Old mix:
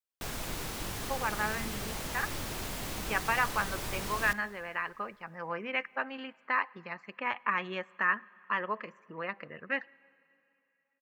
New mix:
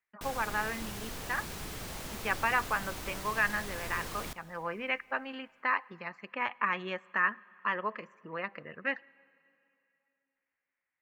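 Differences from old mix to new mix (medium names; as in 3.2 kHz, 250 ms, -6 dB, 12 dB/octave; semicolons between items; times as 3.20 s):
speech: entry -0.85 s; background -3.5 dB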